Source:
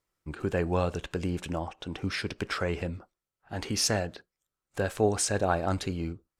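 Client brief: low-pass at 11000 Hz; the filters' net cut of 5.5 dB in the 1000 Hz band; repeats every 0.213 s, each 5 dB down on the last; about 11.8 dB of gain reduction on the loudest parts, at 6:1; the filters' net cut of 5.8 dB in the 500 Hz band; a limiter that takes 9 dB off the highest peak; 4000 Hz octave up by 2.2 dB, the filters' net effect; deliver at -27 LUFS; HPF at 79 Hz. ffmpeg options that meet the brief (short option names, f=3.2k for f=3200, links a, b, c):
-af "highpass=79,lowpass=11k,equalizer=f=500:t=o:g=-6,equalizer=f=1k:t=o:g=-5.5,equalizer=f=4k:t=o:g=3.5,acompressor=threshold=-35dB:ratio=6,alimiter=level_in=5dB:limit=-24dB:level=0:latency=1,volume=-5dB,aecho=1:1:213|426|639|852|1065|1278|1491:0.562|0.315|0.176|0.0988|0.0553|0.031|0.0173,volume=14dB"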